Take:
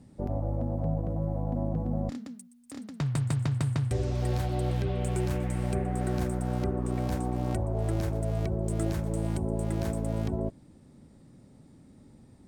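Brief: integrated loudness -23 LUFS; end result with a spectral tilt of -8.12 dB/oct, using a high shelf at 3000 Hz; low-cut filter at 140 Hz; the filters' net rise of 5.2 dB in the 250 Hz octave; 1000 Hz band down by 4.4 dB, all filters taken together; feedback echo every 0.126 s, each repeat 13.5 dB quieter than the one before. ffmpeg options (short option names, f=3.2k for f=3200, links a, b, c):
-af "highpass=140,equalizer=f=250:t=o:g=8.5,equalizer=f=1k:t=o:g=-7.5,highshelf=f=3k:g=-5,aecho=1:1:126|252:0.211|0.0444,volume=7dB"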